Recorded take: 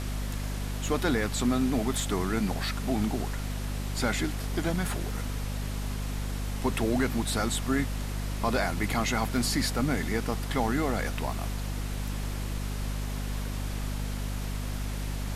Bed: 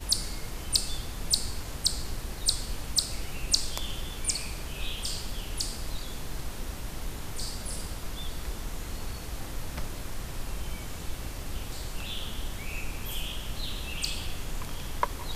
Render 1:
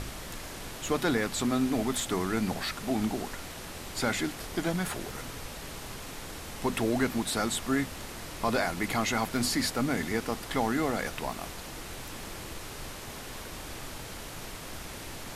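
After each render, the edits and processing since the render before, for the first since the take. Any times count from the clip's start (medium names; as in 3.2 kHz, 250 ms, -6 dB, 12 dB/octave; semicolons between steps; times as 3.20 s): hum notches 50/100/150/200/250 Hz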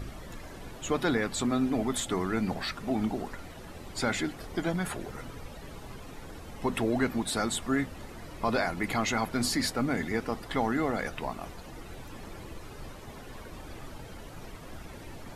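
noise reduction 12 dB, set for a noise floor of -42 dBFS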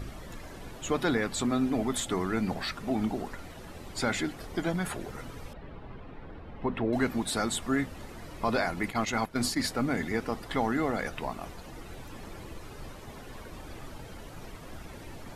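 5.53–6.93 s: distance through air 400 m; 8.90–9.70 s: gate -31 dBFS, range -11 dB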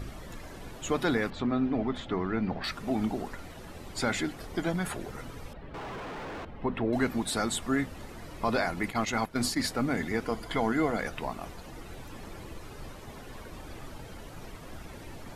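1.30–2.64 s: distance through air 270 m; 5.74–6.45 s: overdrive pedal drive 40 dB, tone 1.8 kHz, clips at -32 dBFS; 10.25–10.97 s: rippled EQ curve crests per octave 1.8, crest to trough 7 dB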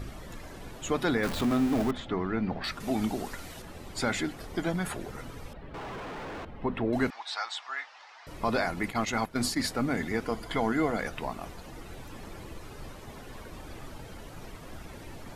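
1.23–1.91 s: jump at every zero crossing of -30.5 dBFS; 2.80–3.62 s: treble shelf 3 kHz +9.5 dB; 7.10–8.27 s: elliptic band-pass 810–5500 Hz, stop band 80 dB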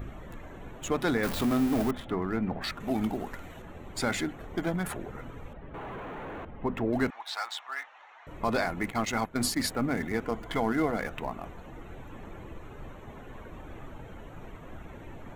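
local Wiener filter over 9 samples; treble shelf 12 kHz +11.5 dB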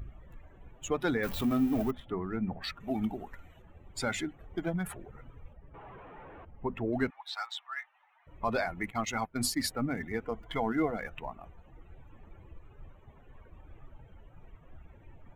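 expander on every frequency bin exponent 1.5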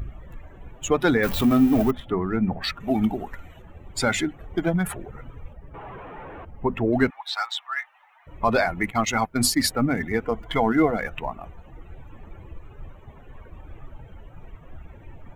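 trim +10 dB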